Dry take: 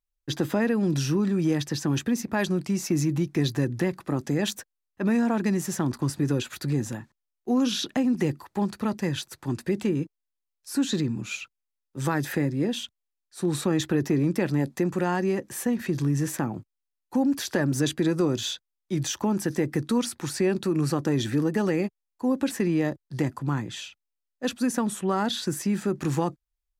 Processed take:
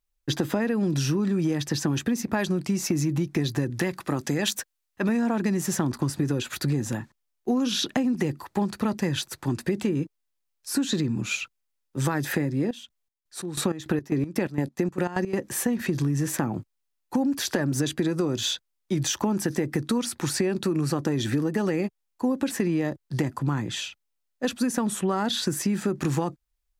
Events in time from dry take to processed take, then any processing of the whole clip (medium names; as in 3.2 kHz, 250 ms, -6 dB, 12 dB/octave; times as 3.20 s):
3.70–5.09 s: tilt shelf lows -3.5 dB
12.60–15.37 s: square tremolo 2.4 Hz -> 6.1 Hz
whole clip: compression, threshold -27 dBFS; trim +5.5 dB